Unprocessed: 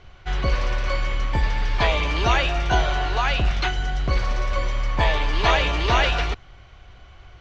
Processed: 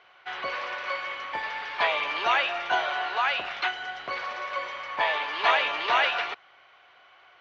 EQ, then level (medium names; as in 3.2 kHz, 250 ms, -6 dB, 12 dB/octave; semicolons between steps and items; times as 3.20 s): band-pass 740–3100 Hz; 0.0 dB